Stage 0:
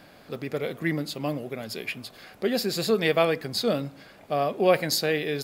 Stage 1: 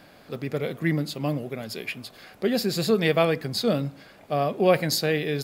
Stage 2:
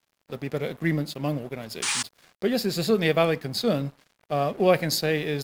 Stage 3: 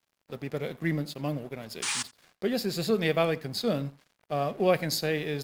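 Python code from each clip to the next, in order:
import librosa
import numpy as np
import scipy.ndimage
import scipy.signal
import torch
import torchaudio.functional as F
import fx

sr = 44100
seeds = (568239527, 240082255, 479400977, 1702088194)

y1 = fx.dynamic_eq(x, sr, hz=140.0, q=0.87, threshold_db=-40.0, ratio=4.0, max_db=6)
y2 = fx.spec_paint(y1, sr, seeds[0], shape='noise', start_s=1.82, length_s=0.21, low_hz=790.0, high_hz=9800.0, level_db=-26.0)
y2 = np.sign(y2) * np.maximum(np.abs(y2) - 10.0 ** (-45.0 / 20.0), 0.0)
y3 = y2 + 10.0 ** (-22.5 / 20.0) * np.pad(y2, (int(86 * sr / 1000.0), 0))[:len(y2)]
y3 = y3 * librosa.db_to_amplitude(-4.0)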